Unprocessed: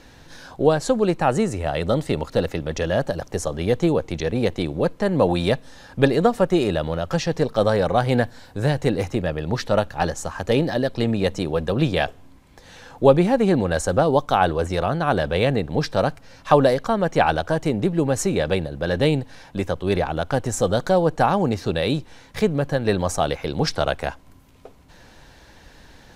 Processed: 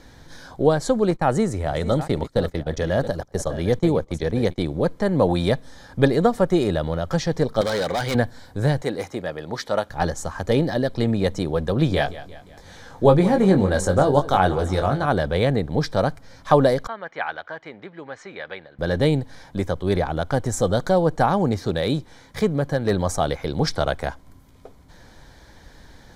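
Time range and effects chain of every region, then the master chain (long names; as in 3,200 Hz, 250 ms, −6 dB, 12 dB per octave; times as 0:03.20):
0:01.11–0:04.58: delay that plays each chunk backwards 536 ms, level −12.5 dB + noise gate −30 dBFS, range −18 dB
0:07.61–0:08.15: meter weighting curve D + gain into a clipping stage and back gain 19 dB
0:08.82–0:09.90: high-pass filter 480 Hz 6 dB per octave + one half of a high-frequency compander decoder only
0:11.88–0:15.06: double-tracking delay 21 ms −6 dB + repeating echo 175 ms, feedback 49%, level −16 dB
0:16.87–0:18.79: resonant band-pass 2,000 Hz, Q 1.3 + high-frequency loss of the air 130 metres
0:21.58–0:22.91: low-shelf EQ 61 Hz −6.5 dB + hard clipping −11 dBFS
whole clip: low-shelf EQ 180 Hz +3.5 dB; notch filter 2,700 Hz, Q 5.1; level −1 dB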